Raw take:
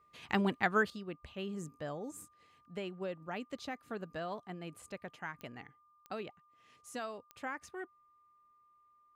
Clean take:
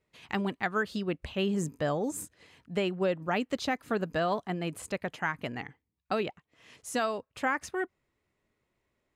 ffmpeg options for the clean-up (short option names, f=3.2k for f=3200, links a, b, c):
-af "adeclick=t=4,bandreject=f=1.2k:w=30,asetnsamples=n=441:p=0,asendcmd='0.9 volume volume 11.5dB',volume=0dB"